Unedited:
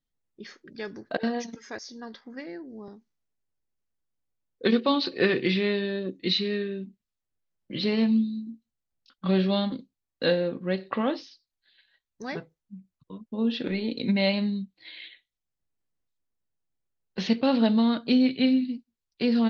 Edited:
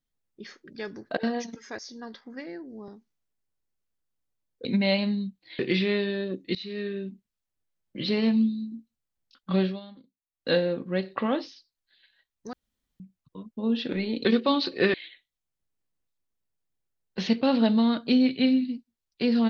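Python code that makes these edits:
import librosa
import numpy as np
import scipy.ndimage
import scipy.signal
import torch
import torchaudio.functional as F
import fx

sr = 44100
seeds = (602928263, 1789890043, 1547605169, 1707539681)

y = fx.edit(x, sr, fx.swap(start_s=4.65, length_s=0.69, other_s=14.0, other_length_s=0.94),
    fx.fade_in_from(start_s=6.3, length_s=0.42, floor_db=-21.5),
    fx.fade_down_up(start_s=9.33, length_s=0.93, db=-19.0, fade_s=0.22),
    fx.room_tone_fill(start_s=12.28, length_s=0.47), tone=tone)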